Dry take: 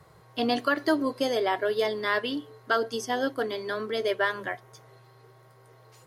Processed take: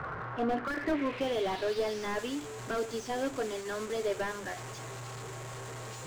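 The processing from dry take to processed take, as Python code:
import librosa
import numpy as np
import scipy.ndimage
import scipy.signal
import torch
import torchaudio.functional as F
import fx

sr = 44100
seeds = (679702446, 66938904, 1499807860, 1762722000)

y = fx.delta_mod(x, sr, bps=64000, step_db=-31.5)
y = fx.filter_sweep_lowpass(y, sr, from_hz=1400.0, to_hz=7300.0, start_s=0.56, end_s=2.21, q=3.5)
y = fx.slew_limit(y, sr, full_power_hz=48.0)
y = y * librosa.db_to_amplitude(-4.0)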